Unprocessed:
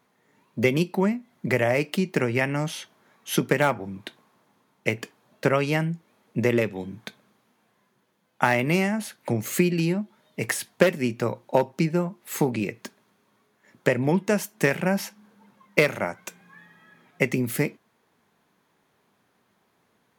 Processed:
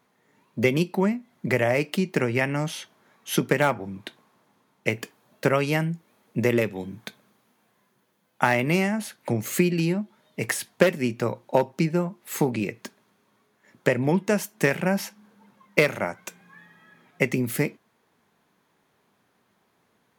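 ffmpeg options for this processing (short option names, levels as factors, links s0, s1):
-filter_complex "[0:a]asettb=1/sr,asplit=3[s0][s1][s2];[s0]atrim=end=4.944[s3];[s1]atrim=start=4.94:end=8.43,asetpts=PTS-STARTPTS,afade=t=in:d=0.004:c=qsin,afade=t=out:st=3.486:d=0.004:c=qsin,highshelf=f=11000:g=8[s4];[s2]atrim=start=8.426[s5];[s3][s4]acrossfade=d=0.004:c1=hsin:c2=qsin[s6];[s6][s5]acrossfade=d=0.004:c1=qsin:c2=hsin"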